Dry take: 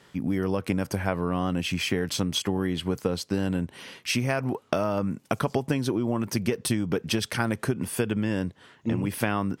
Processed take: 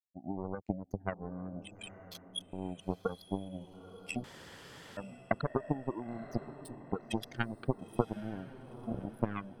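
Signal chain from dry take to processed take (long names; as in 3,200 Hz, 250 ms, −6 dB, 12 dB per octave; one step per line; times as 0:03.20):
expanding power law on the bin magnitudes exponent 3.5
0:01.71–0:02.53: elliptic high-pass filter 1,400 Hz
0:06.44–0:06.86: downward compressor 2 to 1, threshold −33 dBFS, peak gain reduction 6.5 dB
power curve on the samples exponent 3
feedback delay with all-pass diffusion 922 ms, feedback 41%, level −14 dB
0:04.24–0:04.97: fill with room tone
level +4.5 dB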